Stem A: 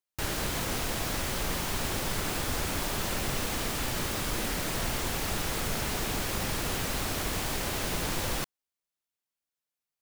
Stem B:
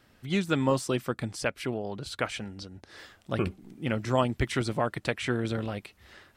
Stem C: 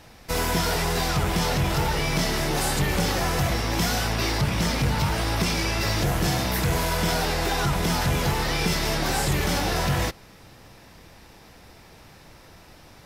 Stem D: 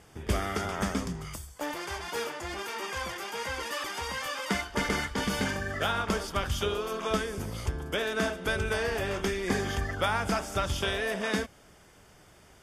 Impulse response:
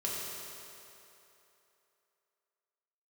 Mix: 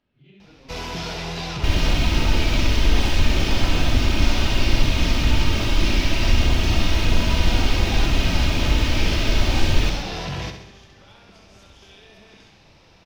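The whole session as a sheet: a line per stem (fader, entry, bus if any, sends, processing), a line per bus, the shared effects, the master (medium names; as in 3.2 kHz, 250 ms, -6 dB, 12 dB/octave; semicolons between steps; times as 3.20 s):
-0.5 dB, 1.45 s, no bus, no send, echo send -7 dB, tone controls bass +14 dB, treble -13 dB; comb 3.2 ms, depth 90%
-10.5 dB, 0.00 s, bus A, no send, no echo send, phase randomisation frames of 200 ms
-4.5 dB, 0.40 s, no bus, no send, echo send -8.5 dB, hard clipper -21 dBFS, distortion -15 dB; low-pass 1.5 kHz 6 dB/octave
-7.0 dB, 1.00 s, bus A, no send, echo send -14.5 dB, compression, threshold -33 dBFS, peak gain reduction 11 dB
bus A: 0.0 dB, tape spacing loss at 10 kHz 44 dB; compression 4:1, threshold -51 dBFS, peak gain reduction 14.5 dB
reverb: none
echo: feedback delay 66 ms, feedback 58%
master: high-order bell 3.9 kHz +11 dB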